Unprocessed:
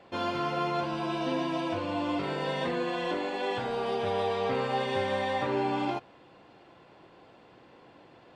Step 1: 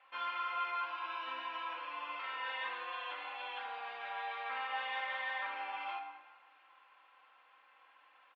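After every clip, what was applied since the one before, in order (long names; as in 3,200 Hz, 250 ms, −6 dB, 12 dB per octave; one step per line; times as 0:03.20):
Chebyshev band-pass filter 1,100–2,700 Hz, order 2
comb filter 3.8 ms, depth 58%
dense smooth reverb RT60 1.4 s, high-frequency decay 0.75×, DRR 5 dB
level −4.5 dB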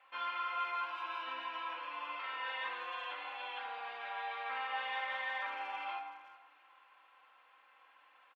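far-end echo of a speakerphone 380 ms, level −18 dB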